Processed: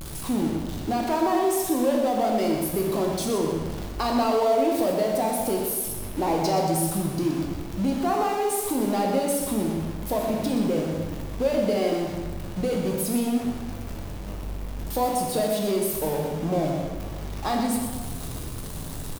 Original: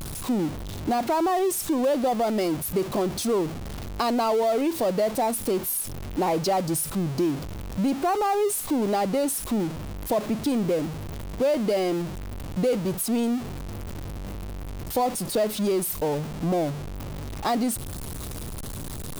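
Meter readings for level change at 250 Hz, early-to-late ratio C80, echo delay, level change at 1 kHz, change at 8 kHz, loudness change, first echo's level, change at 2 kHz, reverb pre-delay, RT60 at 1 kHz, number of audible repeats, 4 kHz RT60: +1.0 dB, 3.0 dB, 123 ms, +0.5 dB, 0.0 dB, +0.5 dB, −8.5 dB, +0.5 dB, 9 ms, 1.3 s, 1, 1.1 s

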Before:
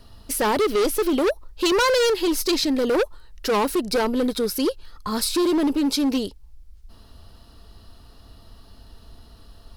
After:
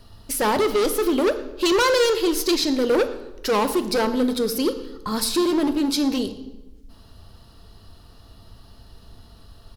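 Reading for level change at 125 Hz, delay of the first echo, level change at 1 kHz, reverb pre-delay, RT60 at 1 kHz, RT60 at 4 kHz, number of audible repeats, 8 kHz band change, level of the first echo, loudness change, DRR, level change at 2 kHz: can't be measured, 117 ms, +0.5 dB, 3 ms, 1.0 s, 0.75 s, 1, +0.5 dB, −20.0 dB, +0.5 dB, 9.5 dB, +0.5 dB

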